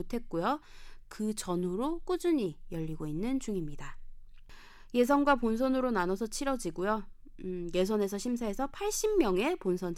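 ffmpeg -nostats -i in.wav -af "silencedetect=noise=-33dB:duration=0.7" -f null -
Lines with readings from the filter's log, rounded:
silence_start: 3.90
silence_end: 4.94 | silence_duration: 1.04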